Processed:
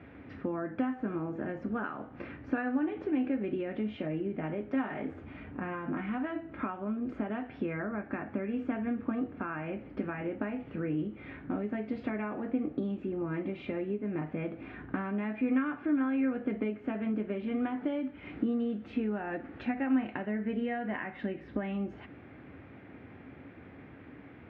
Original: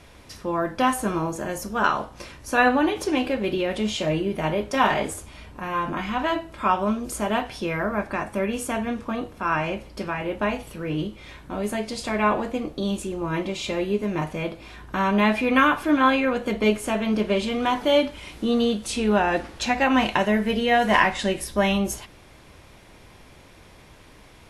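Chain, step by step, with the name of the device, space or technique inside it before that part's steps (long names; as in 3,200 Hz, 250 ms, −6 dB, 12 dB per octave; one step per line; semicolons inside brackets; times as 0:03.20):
bass amplifier (downward compressor 6 to 1, threshold −32 dBFS, peak gain reduction 17.5 dB; loudspeaker in its box 80–2,100 Hz, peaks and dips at 270 Hz +10 dB, 590 Hz −4 dB, 1,000 Hz −10 dB)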